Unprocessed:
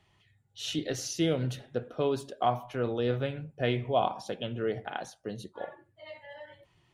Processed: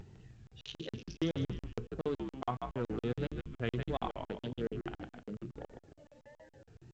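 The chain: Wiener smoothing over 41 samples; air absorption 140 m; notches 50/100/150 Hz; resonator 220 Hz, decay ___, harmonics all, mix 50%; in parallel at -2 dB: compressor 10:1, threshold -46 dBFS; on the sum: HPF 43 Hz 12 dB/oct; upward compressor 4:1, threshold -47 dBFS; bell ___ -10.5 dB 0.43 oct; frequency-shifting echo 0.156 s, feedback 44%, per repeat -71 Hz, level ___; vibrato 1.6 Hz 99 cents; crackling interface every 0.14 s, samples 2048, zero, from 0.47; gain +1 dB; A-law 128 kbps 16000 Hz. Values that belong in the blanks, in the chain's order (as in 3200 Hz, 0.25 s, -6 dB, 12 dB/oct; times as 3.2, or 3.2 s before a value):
0.35 s, 620 Hz, -6 dB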